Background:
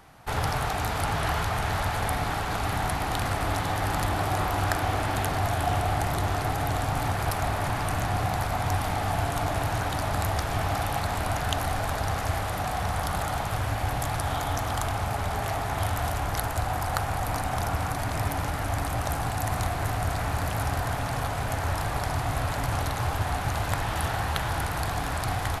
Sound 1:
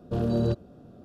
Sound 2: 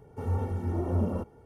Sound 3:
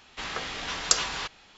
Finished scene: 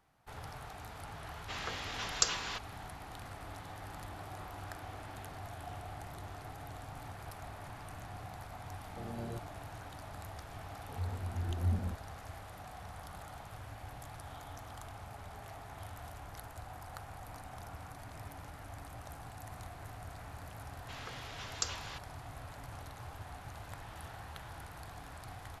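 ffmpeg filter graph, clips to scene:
-filter_complex "[3:a]asplit=2[a][b];[0:a]volume=-19.5dB[c];[2:a]asubboost=boost=12:cutoff=170[d];[a]atrim=end=1.57,asetpts=PTS-STARTPTS,volume=-7dB,afade=t=in:d=0.004:c=hsin,afade=t=out:st=1.566:d=0.004:c=hsin,adelay=1310[e];[1:a]atrim=end=1.04,asetpts=PTS-STARTPTS,volume=-18dB,afade=t=in:d=0.004:c=hsin,afade=t=out:st=1.036:d=0.004:c=hsin,adelay=8850[f];[d]atrim=end=1.45,asetpts=PTS-STARTPTS,volume=-14.5dB,afade=t=in:d=0.004:c=hsin,afade=t=out:st=1.446:d=0.004:c=hsin,adelay=10710[g];[b]atrim=end=1.57,asetpts=PTS-STARTPTS,volume=-13.5dB,afade=t=in:d=0.004:c=hsin,afade=t=out:st=1.566:d=0.004:c=hsin,adelay=20710[h];[c][e][f][g][h]amix=inputs=5:normalize=0"

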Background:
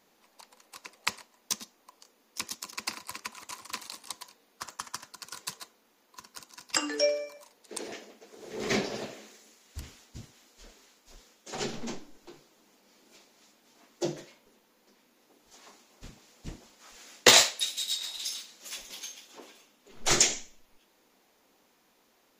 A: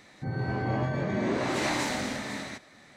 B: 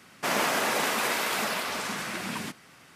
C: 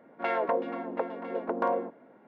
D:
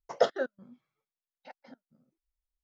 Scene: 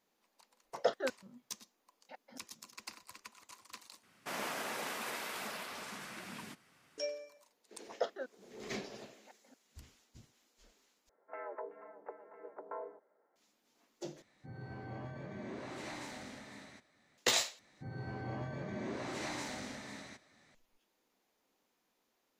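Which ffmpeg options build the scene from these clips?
-filter_complex "[4:a]asplit=2[a][b];[1:a]asplit=2[c][d];[0:a]volume=-13dB[e];[a]alimiter=limit=-13.5dB:level=0:latency=1:release=300[f];[b]highpass=220[g];[3:a]highpass=f=480:t=q:w=0.5412,highpass=f=480:t=q:w=1.307,lowpass=f=2.1k:t=q:w=0.5176,lowpass=f=2.1k:t=q:w=0.7071,lowpass=f=2.1k:t=q:w=1.932,afreqshift=-58[h];[d]equalizer=f=5.9k:t=o:w=0.78:g=3[i];[e]asplit=5[j][k][l][m][n];[j]atrim=end=4.034[o];[2:a]atrim=end=2.95,asetpts=PTS-STARTPTS,volume=-13.5dB[p];[k]atrim=start=6.976:end=11.094[q];[h]atrim=end=2.27,asetpts=PTS-STARTPTS,volume=-15dB[r];[l]atrim=start=13.356:end=14.224[s];[c]atrim=end=2.96,asetpts=PTS-STARTPTS,volume=-16.5dB[t];[m]atrim=start=17.176:end=17.594[u];[i]atrim=end=2.96,asetpts=PTS-STARTPTS,volume=-12.5dB[v];[n]atrim=start=20.546[w];[f]atrim=end=2.63,asetpts=PTS-STARTPTS,volume=-3.5dB,afade=t=in:d=0.004:c=hsin,afade=t=out:st=2.626:d=0.004:c=hsin,adelay=640[x];[g]atrim=end=2.63,asetpts=PTS-STARTPTS,volume=-11dB,afade=t=in:d=0.004:c=hsin,afade=t=out:st=2.626:d=0.004:c=hsin,adelay=7800[y];[o][p]acrossfade=d=0.004:c1=hsin:c2=hsin[z];[z][q]acrossfade=d=0.004:c1=hsin:c2=hsin[aa];[aa][r]acrossfade=d=0.004:c1=hsin:c2=hsin[ab];[ab][s]acrossfade=d=0.004:c1=hsin:c2=hsin[ac];[ac][t]acrossfade=d=0.004:c1=hsin:c2=hsin[ad];[ad][u]acrossfade=d=0.004:c1=hsin:c2=hsin[ae];[ae][v]acrossfade=d=0.004:c1=hsin:c2=hsin[af];[af][w]acrossfade=d=0.004:c1=hsin:c2=hsin[ag];[ag][x][y]amix=inputs=3:normalize=0"

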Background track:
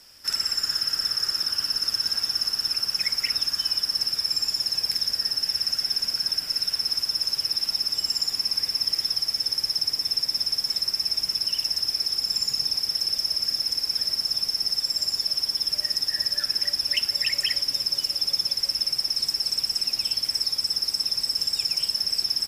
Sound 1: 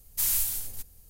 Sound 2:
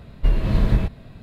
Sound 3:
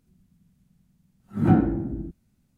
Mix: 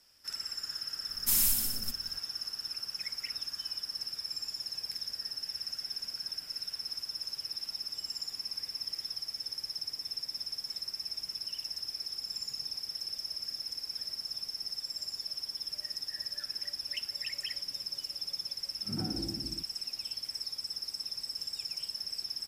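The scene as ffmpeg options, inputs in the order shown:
-filter_complex "[0:a]volume=-13dB[a];[1:a]equalizer=f=230:w=1.9:g=14.5[b];[3:a]acompressor=threshold=-20dB:ratio=6:attack=3.2:release=140:knee=1:detection=peak[c];[b]atrim=end=1.09,asetpts=PTS-STARTPTS,volume=-0.5dB,afade=t=in:d=0.004:c=hsin,afade=t=out:st=1.086:d=0.004:c=hsin,adelay=1090[d];[c]atrim=end=2.57,asetpts=PTS-STARTPTS,volume=-12dB,afade=t=in:d=0.004:c=hsin,afade=t=out:st=2.566:d=0.004:c=hsin,adelay=17520[e];[a][d][e]amix=inputs=3:normalize=0"

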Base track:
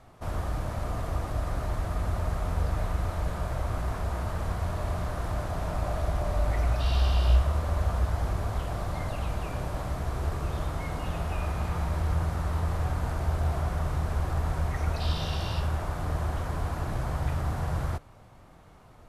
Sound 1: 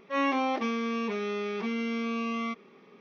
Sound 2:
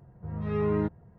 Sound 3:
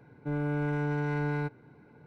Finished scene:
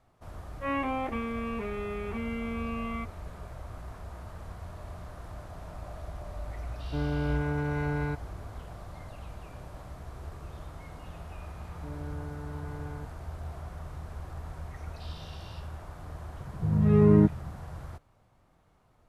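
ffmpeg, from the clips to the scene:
-filter_complex "[3:a]asplit=2[a][b];[0:a]volume=-12dB[c];[1:a]lowpass=f=2.8k:w=0.5412,lowpass=f=2.8k:w=1.3066[d];[b]lowpass=1.4k[e];[2:a]equalizer=f=150:w=0.46:g=12[f];[d]atrim=end=3,asetpts=PTS-STARTPTS,volume=-3.5dB,afade=t=in:d=0.004:c=hsin,afade=t=out:st=2.996:d=0.004:c=hsin,adelay=510[g];[a]atrim=end=2.06,asetpts=PTS-STARTPTS,volume=-0.5dB,afade=t=in:d=0.004:c=hsin,afade=t=out:st=2.056:d=0.004:c=hsin,adelay=6670[h];[e]atrim=end=2.06,asetpts=PTS-STARTPTS,volume=-11.5dB,afade=t=in:d=0.004:c=hsin,afade=t=out:st=2.056:d=0.004:c=hsin,adelay=11570[i];[f]atrim=end=1.18,asetpts=PTS-STARTPTS,volume=-1dB,afade=t=in:d=0.004:c=hsin,afade=t=out:st=1.176:d=0.004:c=hsin,adelay=16390[j];[c][g][h][i][j]amix=inputs=5:normalize=0"

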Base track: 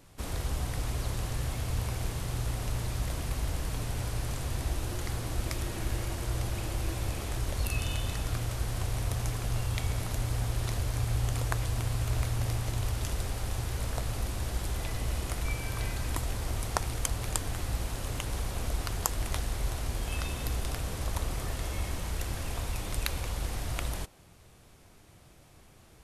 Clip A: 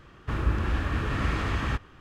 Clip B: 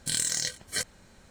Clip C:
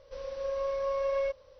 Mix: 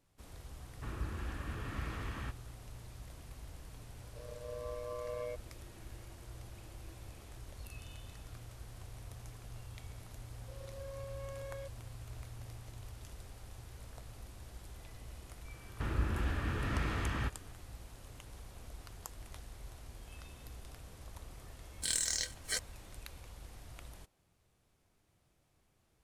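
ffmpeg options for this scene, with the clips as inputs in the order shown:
-filter_complex "[1:a]asplit=2[a][b];[3:a]asplit=2[c][d];[0:a]volume=-17.5dB[e];[c]aeval=exprs='val(0)*sin(2*PI*59*n/s)':c=same[f];[d]volume=30dB,asoftclip=hard,volume=-30dB[g];[b]bandreject=f=1.1k:w=20[h];[2:a]highpass=290[i];[a]atrim=end=2,asetpts=PTS-STARTPTS,volume=-14dB,afade=t=in:d=0.004:c=hsin,afade=t=out:st=1.996:d=0.004:c=hsin,adelay=540[j];[f]atrim=end=1.59,asetpts=PTS-STARTPTS,volume=-8.5dB,afade=t=in:d=0.004:c=hsin,afade=t=out:st=1.586:d=0.004:c=hsin,adelay=4040[k];[g]atrim=end=1.59,asetpts=PTS-STARTPTS,volume=-14.5dB,afade=t=in:d=0.004:c=hsin,afade=t=out:st=1.586:d=0.004:c=hsin,adelay=10360[l];[h]atrim=end=2,asetpts=PTS-STARTPTS,volume=-7.5dB,afade=t=in:d=0.004:c=hsin,afade=t=out:st=1.996:d=0.004:c=hsin,adelay=15520[m];[i]atrim=end=1.3,asetpts=PTS-STARTPTS,volume=-5.5dB,afade=t=in:d=0.1,afade=t=out:st=1.2:d=0.1,adelay=21760[n];[e][j][k][l][m][n]amix=inputs=6:normalize=0"

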